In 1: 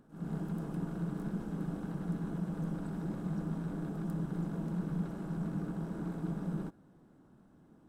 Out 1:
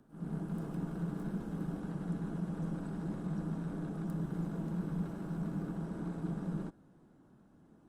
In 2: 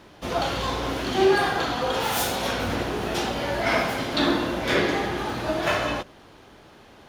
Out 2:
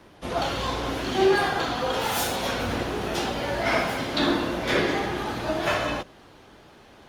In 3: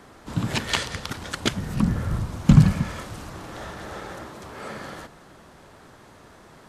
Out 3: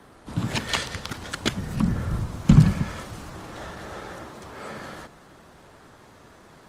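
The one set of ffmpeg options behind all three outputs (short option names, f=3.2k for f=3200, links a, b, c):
-filter_complex "[0:a]acrossover=split=250|830|4000[a][b][c][d];[d]aeval=exprs='clip(val(0),-1,0.119)':c=same[e];[a][b][c][e]amix=inputs=4:normalize=0,volume=-1dB" -ar 48000 -c:a libopus -b:a 32k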